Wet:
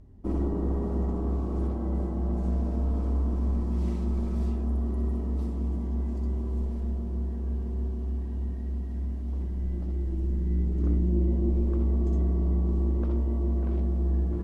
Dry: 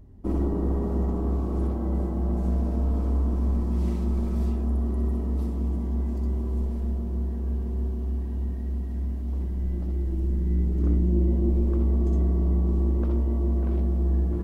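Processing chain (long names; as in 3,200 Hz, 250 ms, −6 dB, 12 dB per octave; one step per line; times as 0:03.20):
low-pass filter 9,800 Hz 12 dB per octave
level −2.5 dB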